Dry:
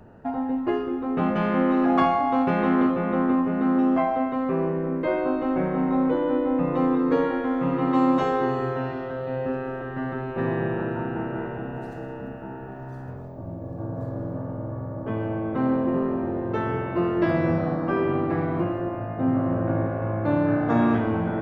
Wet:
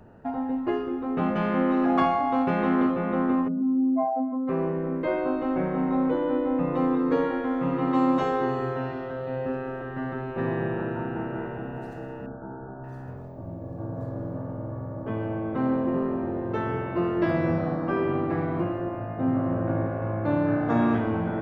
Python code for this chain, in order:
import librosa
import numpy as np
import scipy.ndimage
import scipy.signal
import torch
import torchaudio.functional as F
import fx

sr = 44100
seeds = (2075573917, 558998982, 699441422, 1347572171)

y = fx.spec_expand(x, sr, power=2.2, at=(3.47, 4.47), fade=0.02)
y = fx.brickwall_lowpass(y, sr, high_hz=1700.0, at=(12.26, 12.84))
y = y * librosa.db_to_amplitude(-2.0)